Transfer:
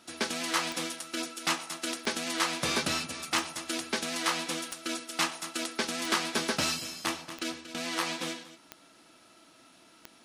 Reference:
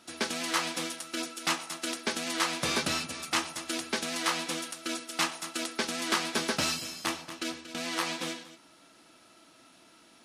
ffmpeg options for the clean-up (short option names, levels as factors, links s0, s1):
-af "adeclick=t=4"